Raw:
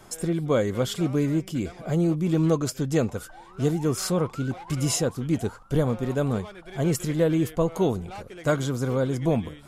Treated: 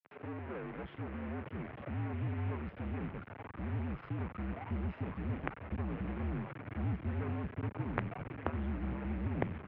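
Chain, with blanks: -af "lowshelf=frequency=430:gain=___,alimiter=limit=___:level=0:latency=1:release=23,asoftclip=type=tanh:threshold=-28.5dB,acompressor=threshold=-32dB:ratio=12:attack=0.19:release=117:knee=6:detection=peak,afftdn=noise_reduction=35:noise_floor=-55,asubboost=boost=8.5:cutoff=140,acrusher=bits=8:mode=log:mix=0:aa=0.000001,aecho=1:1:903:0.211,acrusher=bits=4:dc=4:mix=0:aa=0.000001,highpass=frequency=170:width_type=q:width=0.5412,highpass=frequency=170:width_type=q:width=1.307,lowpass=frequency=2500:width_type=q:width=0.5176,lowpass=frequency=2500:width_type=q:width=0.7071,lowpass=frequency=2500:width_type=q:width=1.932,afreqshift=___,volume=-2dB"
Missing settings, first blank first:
2.5, -13.5dB, -63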